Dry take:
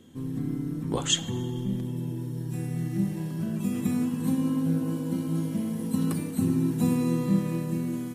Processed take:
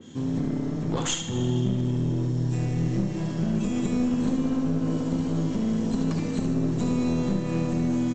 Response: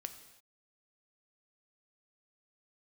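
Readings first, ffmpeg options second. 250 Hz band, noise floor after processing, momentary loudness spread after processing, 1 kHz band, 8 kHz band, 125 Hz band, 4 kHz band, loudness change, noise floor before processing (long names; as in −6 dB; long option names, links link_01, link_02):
+2.0 dB, −30 dBFS, 3 LU, +3.5 dB, −1.0 dB, +3.0 dB, −3.0 dB, +2.0 dB, −35 dBFS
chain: -af "highpass=76,highshelf=frequency=3900:gain=9,acompressor=threshold=-28dB:ratio=6,aresample=16000,aeval=exprs='clip(val(0),-1,0.0211)':channel_layout=same,aresample=44100,aecho=1:1:73|146|219|292:0.447|0.147|0.0486|0.0161,adynamicequalizer=threshold=0.00178:dfrequency=2800:dqfactor=0.7:tfrequency=2800:tqfactor=0.7:attack=5:release=100:ratio=0.375:range=1.5:mode=cutabove:tftype=highshelf,volume=6.5dB"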